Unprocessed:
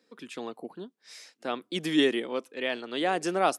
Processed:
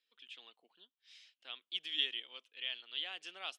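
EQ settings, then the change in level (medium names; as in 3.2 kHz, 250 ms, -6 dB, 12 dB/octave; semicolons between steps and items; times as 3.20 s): band-pass filter 3.1 kHz, Q 5.3; 0.0 dB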